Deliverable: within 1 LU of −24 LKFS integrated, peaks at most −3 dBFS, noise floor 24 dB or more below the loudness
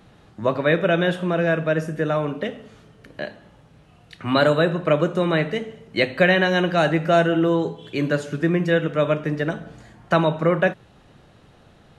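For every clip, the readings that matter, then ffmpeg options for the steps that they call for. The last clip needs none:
integrated loudness −21.0 LKFS; sample peak −4.5 dBFS; target loudness −24.0 LKFS
→ -af "volume=-3dB"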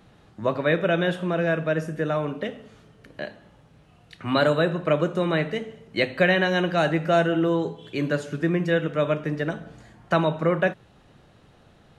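integrated loudness −24.0 LKFS; sample peak −7.5 dBFS; background noise floor −55 dBFS

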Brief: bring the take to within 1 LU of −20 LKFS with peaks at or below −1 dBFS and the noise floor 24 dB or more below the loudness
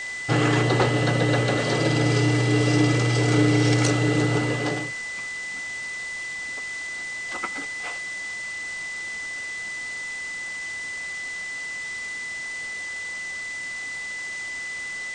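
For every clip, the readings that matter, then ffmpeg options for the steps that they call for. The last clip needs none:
interfering tone 2,000 Hz; level of the tone −30 dBFS; background noise floor −33 dBFS; target noise floor −49 dBFS; integrated loudness −25.0 LKFS; sample peak −7.5 dBFS; target loudness −20.0 LKFS
→ -af "bandreject=frequency=2000:width=30"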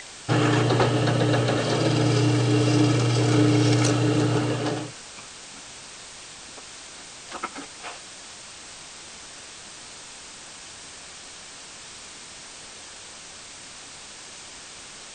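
interfering tone none found; background noise floor −43 dBFS; target noise floor −46 dBFS
→ -af "afftdn=noise_reduction=6:noise_floor=-43"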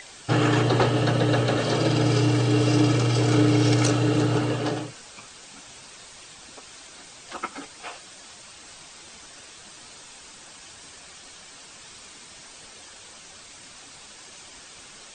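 background noise floor −46 dBFS; integrated loudness −22.0 LKFS; sample peak −7.5 dBFS; target loudness −20.0 LKFS
→ -af "volume=2dB"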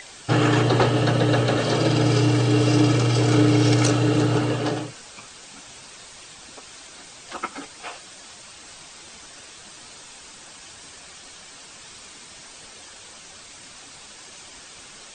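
integrated loudness −20.0 LKFS; sample peak −5.5 dBFS; background noise floor −44 dBFS

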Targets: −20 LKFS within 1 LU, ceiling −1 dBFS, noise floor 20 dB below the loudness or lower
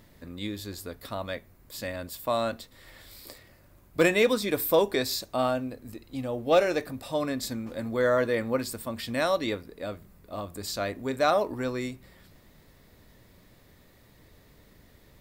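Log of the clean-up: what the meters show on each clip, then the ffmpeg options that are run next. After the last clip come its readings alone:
integrated loudness −28.5 LKFS; sample peak −12.0 dBFS; target loudness −20.0 LKFS
→ -af "volume=8.5dB"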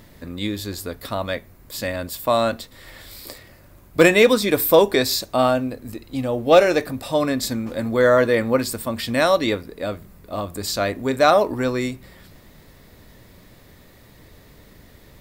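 integrated loudness −20.0 LKFS; sample peak −3.5 dBFS; background noise floor −49 dBFS

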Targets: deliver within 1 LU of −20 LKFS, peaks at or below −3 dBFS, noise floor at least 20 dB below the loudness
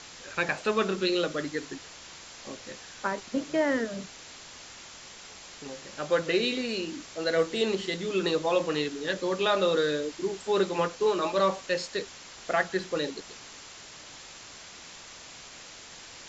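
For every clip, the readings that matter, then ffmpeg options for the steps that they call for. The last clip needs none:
background noise floor −47 dBFS; target noise floor −49 dBFS; integrated loudness −28.5 LKFS; sample peak −12.5 dBFS; target loudness −20.0 LKFS
→ -af "afftdn=noise_reduction=6:noise_floor=-47"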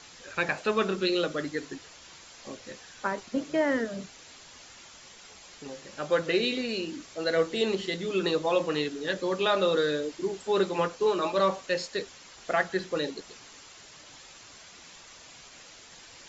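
background noise floor −51 dBFS; integrated loudness −28.5 LKFS; sample peak −12.5 dBFS; target loudness −20.0 LKFS
→ -af "volume=8.5dB"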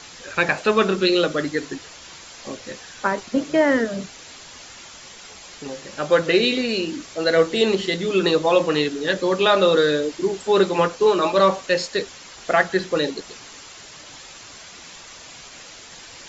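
integrated loudness −20.0 LKFS; sample peak −4.0 dBFS; background noise floor −42 dBFS

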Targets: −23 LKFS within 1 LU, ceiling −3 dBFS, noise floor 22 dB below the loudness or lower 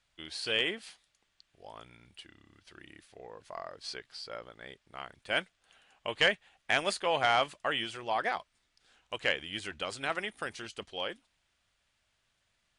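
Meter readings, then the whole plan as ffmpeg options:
integrated loudness −33.0 LKFS; sample peak −14.5 dBFS; target loudness −23.0 LKFS
→ -af "volume=10dB"

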